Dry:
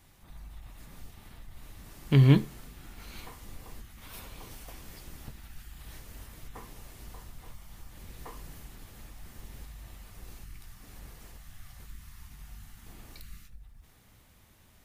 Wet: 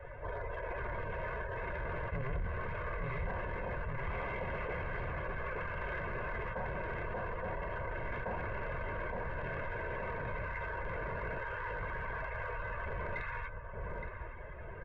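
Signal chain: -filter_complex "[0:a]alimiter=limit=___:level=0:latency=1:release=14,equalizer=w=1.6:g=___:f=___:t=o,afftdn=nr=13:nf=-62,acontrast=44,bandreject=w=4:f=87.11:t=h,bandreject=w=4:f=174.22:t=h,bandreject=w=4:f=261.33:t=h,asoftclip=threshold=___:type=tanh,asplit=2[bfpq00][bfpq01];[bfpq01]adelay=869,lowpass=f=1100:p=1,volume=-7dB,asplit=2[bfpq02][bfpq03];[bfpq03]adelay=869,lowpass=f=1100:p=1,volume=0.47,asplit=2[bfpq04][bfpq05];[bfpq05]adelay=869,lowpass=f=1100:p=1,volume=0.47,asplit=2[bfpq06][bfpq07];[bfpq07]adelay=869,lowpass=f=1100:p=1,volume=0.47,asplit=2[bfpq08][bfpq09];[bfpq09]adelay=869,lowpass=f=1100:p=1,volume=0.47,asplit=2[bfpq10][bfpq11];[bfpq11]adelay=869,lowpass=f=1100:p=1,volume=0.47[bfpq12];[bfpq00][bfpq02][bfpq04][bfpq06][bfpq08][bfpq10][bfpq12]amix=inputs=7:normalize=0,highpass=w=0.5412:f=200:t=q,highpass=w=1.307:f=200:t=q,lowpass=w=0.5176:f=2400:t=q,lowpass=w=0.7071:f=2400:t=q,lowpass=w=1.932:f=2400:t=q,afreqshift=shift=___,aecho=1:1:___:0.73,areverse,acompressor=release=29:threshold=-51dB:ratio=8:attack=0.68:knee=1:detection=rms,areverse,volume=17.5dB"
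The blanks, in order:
-15dB, -11.5, 82, -26.5dB, -250, 1.9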